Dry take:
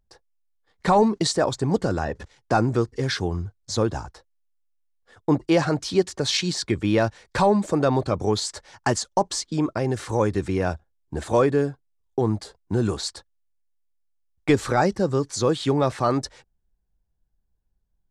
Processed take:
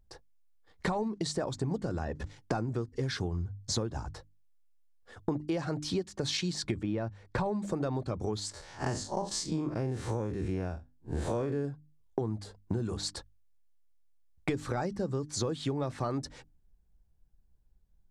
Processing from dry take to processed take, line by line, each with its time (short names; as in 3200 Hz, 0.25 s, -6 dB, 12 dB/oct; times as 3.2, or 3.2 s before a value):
6.83–7.46 high shelf 2900 Hz -12 dB
8.51–11.65 time blur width 96 ms
whole clip: low shelf 320 Hz +7 dB; notches 50/100/150/200/250/300 Hz; compressor 12:1, threshold -29 dBFS